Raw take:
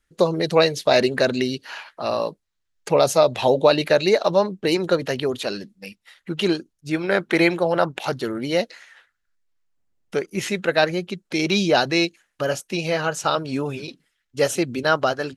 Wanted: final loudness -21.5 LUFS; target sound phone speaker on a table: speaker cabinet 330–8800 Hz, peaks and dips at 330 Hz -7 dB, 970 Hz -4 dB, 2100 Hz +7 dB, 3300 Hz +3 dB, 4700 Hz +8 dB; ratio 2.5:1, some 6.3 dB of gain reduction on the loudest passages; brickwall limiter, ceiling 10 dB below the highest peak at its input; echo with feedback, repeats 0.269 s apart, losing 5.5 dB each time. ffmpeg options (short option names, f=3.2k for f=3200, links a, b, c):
-af "acompressor=threshold=-21dB:ratio=2.5,alimiter=limit=-18dB:level=0:latency=1,highpass=f=330:w=0.5412,highpass=f=330:w=1.3066,equalizer=f=330:t=q:w=4:g=-7,equalizer=f=970:t=q:w=4:g=-4,equalizer=f=2.1k:t=q:w=4:g=7,equalizer=f=3.3k:t=q:w=4:g=3,equalizer=f=4.7k:t=q:w=4:g=8,lowpass=f=8.8k:w=0.5412,lowpass=f=8.8k:w=1.3066,aecho=1:1:269|538|807|1076|1345|1614|1883:0.531|0.281|0.149|0.079|0.0419|0.0222|0.0118,volume=7.5dB"